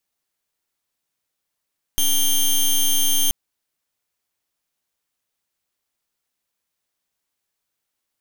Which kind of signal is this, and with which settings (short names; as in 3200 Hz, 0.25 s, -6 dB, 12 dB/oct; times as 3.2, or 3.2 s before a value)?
pulse 3170 Hz, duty 11% -17 dBFS 1.33 s